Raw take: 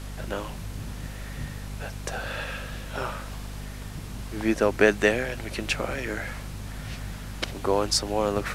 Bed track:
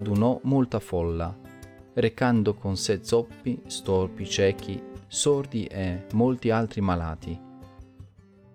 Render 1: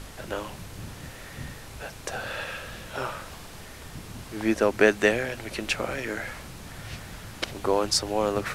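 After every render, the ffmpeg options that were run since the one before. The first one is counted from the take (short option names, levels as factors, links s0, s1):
-af "bandreject=f=50:t=h:w=6,bandreject=f=100:t=h:w=6,bandreject=f=150:t=h:w=6,bandreject=f=200:t=h:w=6,bandreject=f=250:t=h:w=6"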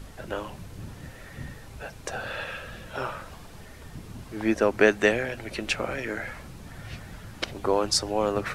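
-af "afftdn=nr=7:nf=-43"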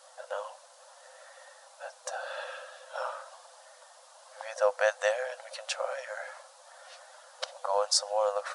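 -af "afftfilt=real='re*between(b*sr/4096,500,11000)':imag='im*between(b*sr/4096,500,11000)':win_size=4096:overlap=0.75,equalizer=f=2300:w=1.6:g=-13.5"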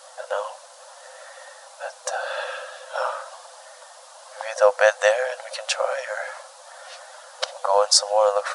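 -af "volume=2.99"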